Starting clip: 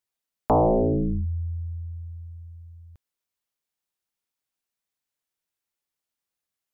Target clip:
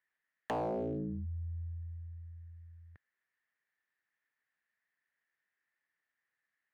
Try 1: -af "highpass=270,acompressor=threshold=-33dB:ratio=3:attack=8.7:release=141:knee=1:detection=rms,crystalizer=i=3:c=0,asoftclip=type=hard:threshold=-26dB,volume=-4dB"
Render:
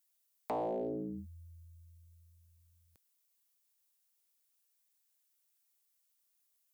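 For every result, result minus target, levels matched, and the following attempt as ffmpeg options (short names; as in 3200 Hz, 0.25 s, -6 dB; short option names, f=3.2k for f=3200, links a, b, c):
125 Hz band -11.5 dB; 2000 Hz band -10.0 dB
-af "highpass=100,acompressor=threshold=-33dB:ratio=3:attack=8.7:release=141:knee=1:detection=rms,crystalizer=i=3:c=0,asoftclip=type=hard:threshold=-26dB,volume=-4dB"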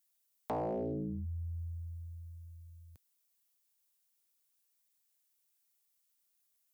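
2000 Hz band -8.5 dB
-af "highpass=100,acompressor=threshold=-33dB:ratio=3:attack=8.7:release=141:knee=1:detection=rms,lowpass=f=1.8k:t=q:w=10,crystalizer=i=3:c=0,asoftclip=type=hard:threshold=-26dB,volume=-4dB"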